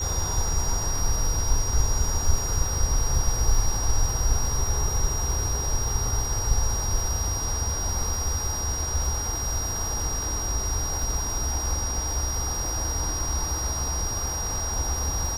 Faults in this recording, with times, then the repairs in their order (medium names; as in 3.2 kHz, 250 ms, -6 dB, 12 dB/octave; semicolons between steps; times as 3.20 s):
crackle 41 per s -31 dBFS
whine 5.7 kHz -29 dBFS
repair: de-click; band-stop 5.7 kHz, Q 30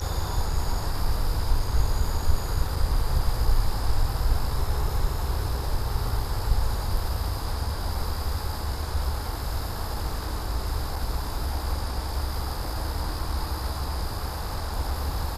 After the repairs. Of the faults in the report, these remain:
nothing left